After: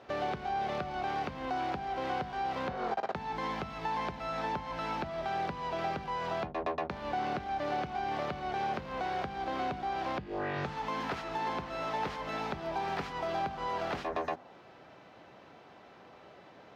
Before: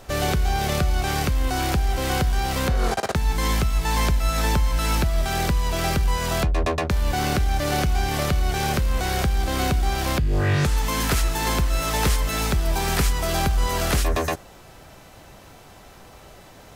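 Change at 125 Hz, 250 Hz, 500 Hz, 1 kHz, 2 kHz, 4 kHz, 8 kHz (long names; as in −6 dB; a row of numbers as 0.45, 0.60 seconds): −22.0 dB, −12.5 dB, −8.5 dB, −5.5 dB, −11.5 dB, −16.5 dB, below −25 dB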